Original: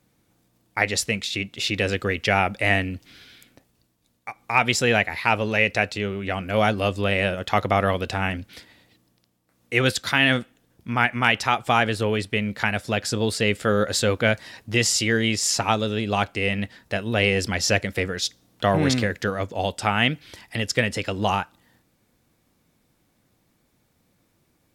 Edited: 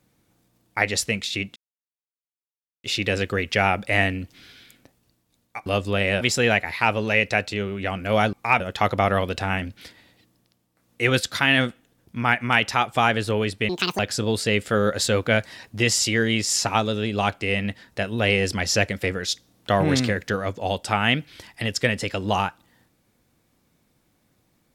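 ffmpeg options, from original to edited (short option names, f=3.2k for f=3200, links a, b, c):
-filter_complex "[0:a]asplit=8[a][b][c][d][e][f][g][h];[a]atrim=end=1.56,asetpts=PTS-STARTPTS,afade=t=out:st=1.556:d=0.004:c=hsin,apad=pad_dur=1.28[i];[b]atrim=start=1.56:end=4.382,asetpts=PTS-STARTPTS,afade=t=in:d=0.004:c=hsin[j];[c]atrim=start=6.768:end=7.322[k];[d]atrim=start=4.648:end=6.772[l];[e]atrim=start=4.378:end=4.652[m];[f]atrim=start=7.318:end=12.414[n];[g]atrim=start=12.41:end=12.93,asetpts=PTS-STARTPTS,asetrate=76293,aresample=44100,atrim=end_sample=13255,asetpts=PTS-STARTPTS[o];[h]atrim=start=12.926[p];[i][j]concat=n=2:v=0:a=1[q];[q][k]acrossfade=d=0.004:c1=hsin:c2=hsin[r];[r][l]acrossfade=d=0.004:c1=hsin:c2=hsin[s];[s][m]acrossfade=d=0.004:c1=hsin:c2=hsin[t];[t][n]acrossfade=d=0.004:c1=hsin:c2=hsin[u];[u][o]acrossfade=d=0.004:c1=hsin:c2=hsin[v];[v][p]acrossfade=d=0.004:c1=hsin:c2=hsin"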